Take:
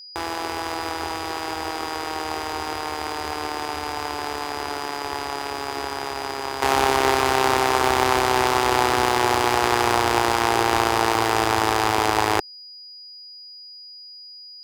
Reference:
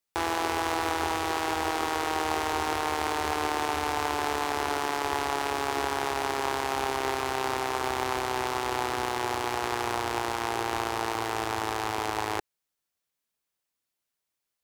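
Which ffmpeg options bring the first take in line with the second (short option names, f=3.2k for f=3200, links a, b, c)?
-af "bandreject=f=4.9k:w=30,asetnsamples=n=441:p=0,asendcmd='6.62 volume volume -10dB',volume=0dB"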